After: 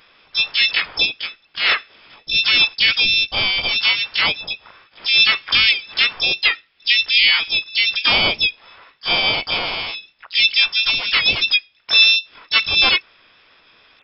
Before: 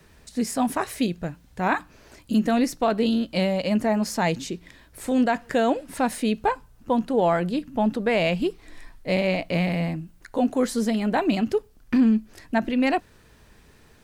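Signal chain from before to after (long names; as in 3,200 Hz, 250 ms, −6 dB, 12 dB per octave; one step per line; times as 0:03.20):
Butterworth high-pass 220 Hz 96 dB per octave
tape wow and flutter 26 cents
voice inversion scrambler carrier 2,900 Hz
pitch-shifted copies added +5 semitones 0 dB, +7 semitones −7 dB, +12 semitones −4 dB
level +2.5 dB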